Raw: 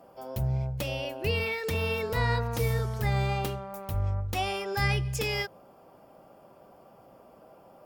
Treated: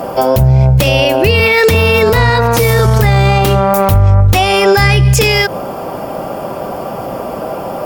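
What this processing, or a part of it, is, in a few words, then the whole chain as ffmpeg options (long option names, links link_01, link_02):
loud club master: -filter_complex "[0:a]asettb=1/sr,asplit=3[link_01][link_02][link_03];[link_01]atrim=end=2.304[link_04];[link_02]atrim=start=2.3:end=2.86,asetpts=PTS-STARTPTS,afade=type=in:duration=0.004:curve=qsin,afade=type=out:start_time=0.556:duration=0.004:curve=qsin,lowshelf=frequency=150:gain=-9.5[link_05];[link_03]atrim=start=2.856[link_06];[link_04][link_05]acrossfade=duration=0.004:curve1=hsin:curve2=qsin[link_07];[link_07][link_06]acrossfade=duration=0.004:curve1=qsin:curve2=hsin,acompressor=threshold=-33dB:ratio=1.5,asoftclip=type=hard:threshold=-22.5dB,alimiter=level_in=34dB:limit=-1dB:release=50:level=0:latency=1,volume=-1dB"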